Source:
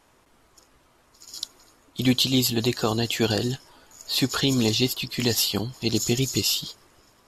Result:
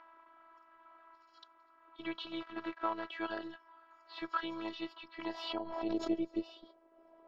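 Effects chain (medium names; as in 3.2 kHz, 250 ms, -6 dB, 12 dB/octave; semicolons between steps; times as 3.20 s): 2.40–3.10 s: dead-time distortion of 0.11 ms; upward compressor, threshold -42 dBFS; band-pass sweep 1.2 kHz -> 570 Hz, 4.98–6.13 s; robot voice 328 Hz; distance through air 310 m; 5.29–6.10 s: swell ahead of each attack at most 57 dB/s; trim +3 dB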